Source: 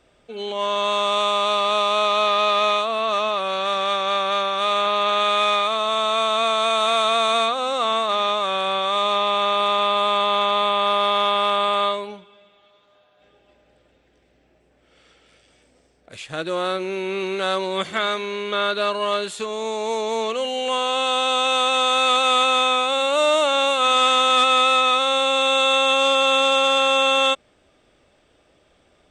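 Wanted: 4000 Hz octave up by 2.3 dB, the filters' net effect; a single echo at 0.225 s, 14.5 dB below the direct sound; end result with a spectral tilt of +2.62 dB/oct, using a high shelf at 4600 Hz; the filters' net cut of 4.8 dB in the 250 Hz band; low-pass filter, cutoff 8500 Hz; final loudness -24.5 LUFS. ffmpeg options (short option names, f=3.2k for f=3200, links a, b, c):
-af "lowpass=8.5k,equalizer=f=250:t=o:g=-6.5,equalizer=f=4k:t=o:g=4,highshelf=f=4.6k:g=-3,aecho=1:1:225:0.188,volume=-6dB"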